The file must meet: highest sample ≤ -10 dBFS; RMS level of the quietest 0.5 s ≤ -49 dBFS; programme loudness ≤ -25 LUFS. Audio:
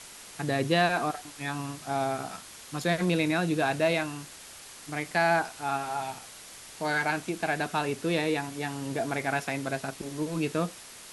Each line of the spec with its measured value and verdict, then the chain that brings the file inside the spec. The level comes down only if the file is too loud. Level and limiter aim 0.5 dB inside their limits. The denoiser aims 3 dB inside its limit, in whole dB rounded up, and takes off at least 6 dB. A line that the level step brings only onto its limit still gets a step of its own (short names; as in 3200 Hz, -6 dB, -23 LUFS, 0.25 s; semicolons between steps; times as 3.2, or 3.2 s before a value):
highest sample -11.0 dBFS: OK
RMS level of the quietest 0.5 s -47 dBFS: fail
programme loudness -29.5 LUFS: OK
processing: denoiser 6 dB, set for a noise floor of -47 dBFS